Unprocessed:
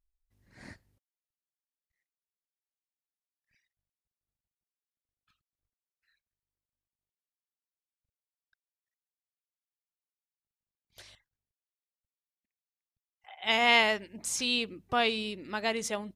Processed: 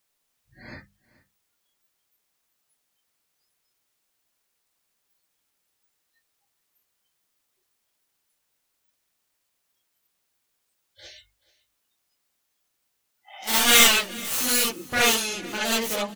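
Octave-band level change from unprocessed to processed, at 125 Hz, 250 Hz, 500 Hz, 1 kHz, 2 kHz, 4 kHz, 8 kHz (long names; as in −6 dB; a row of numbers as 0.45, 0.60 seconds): +5.5, +5.0, +3.0, +3.0, +5.5, +8.5, +16.0 decibels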